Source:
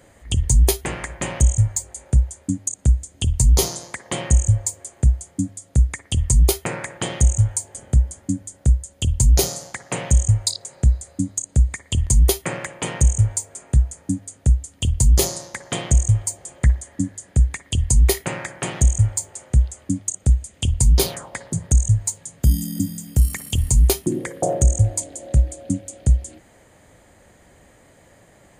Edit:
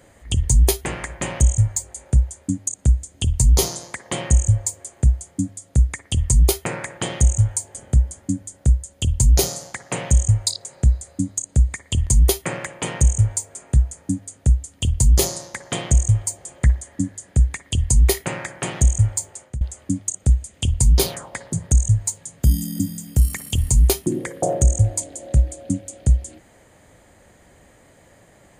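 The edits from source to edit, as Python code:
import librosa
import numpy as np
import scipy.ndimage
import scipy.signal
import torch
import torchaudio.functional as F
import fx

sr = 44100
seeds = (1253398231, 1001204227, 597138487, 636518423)

y = fx.edit(x, sr, fx.fade_out_to(start_s=19.2, length_s=0.41, curve='qsin', floor_db=-23.5), tone=tone)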